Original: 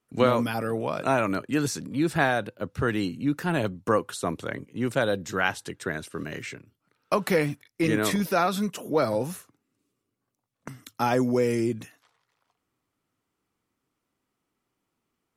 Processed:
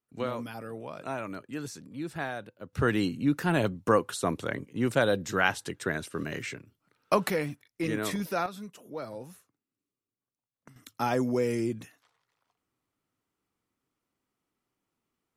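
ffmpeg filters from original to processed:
ffmpeg -i in.wav -af "asetnsamples=nb_out_samples=441:pad=0,asendcmd='2.73 volume volume 0dB;7.3 volume volume -6.5dB;8.46 volume volume -14.5dB;10.76 volume volume -4dB',volume=-11.5dB" out.wav

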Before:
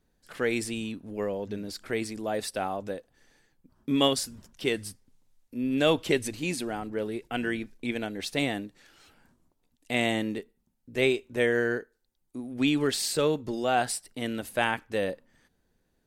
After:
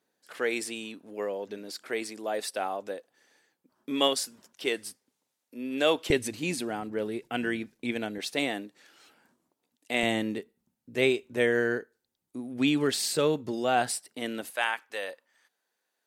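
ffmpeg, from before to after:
ffmpeg -i in.wav -af "asetnsamples=nb_out_samples=441:pad=0,asendcmd='6.1 highpass f 120;8.18 highpass f 260;10.03 highpass f 110;13.91 highpass f 240;14.5 highpass f 790',highpass=350" out.wav

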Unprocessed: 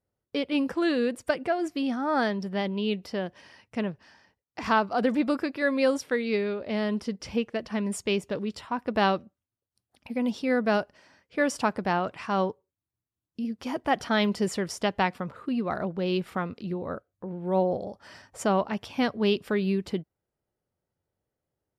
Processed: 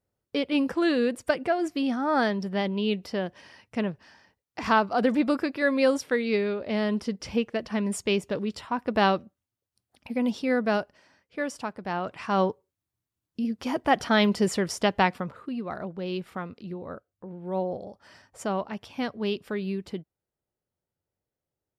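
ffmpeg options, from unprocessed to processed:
ffmpeg -i in.wav -af "volume=13.5dB,afade=type=out:start_time=10.23:duration=1.54:silence=0.298538,afade=type=in:start_time=11.77:duration=0.69:silence=0.251189,afade=type=out:start_time=15.08:duration=0.43:silence=0.421697" out.wav

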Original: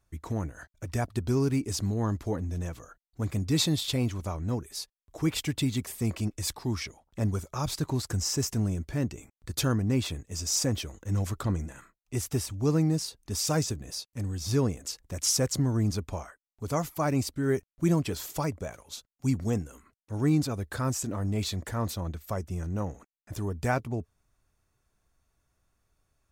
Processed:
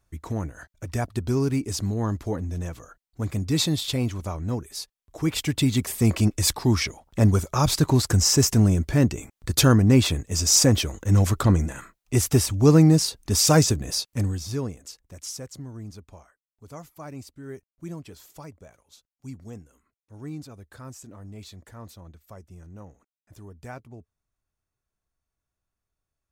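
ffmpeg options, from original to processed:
ffmpeg -i in.wav -af "volume=10dB,afade=type=in:start_time=5.25:duration=0.98:silence=0.421697,afade=type=out:start_time=14.15:duration=0.33:silence=0.237137,afade=type=out:start_time=14.48:duration=0.98:silence=0.334965" out.wav

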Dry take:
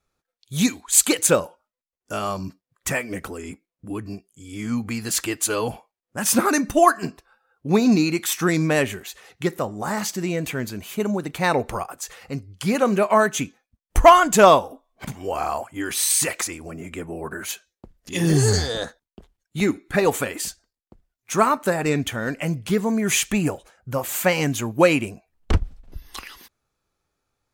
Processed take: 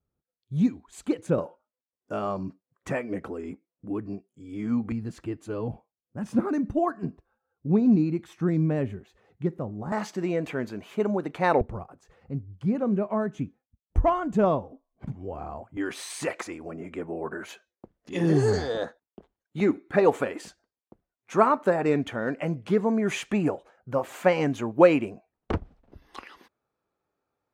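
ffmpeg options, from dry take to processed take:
ffmpeg -i in.wav -af "asetnsamples=nb_out_samples=441:pad=0,asendcmd='1.38 bandpass f 350;4.92 bandpass f 110;9.92 bandpass f 550;11.61 bandpass f 100;15.77 bandpass f 510',bandpass=frequency=120:width_type=q:width=0.54:csg=0" out.wav

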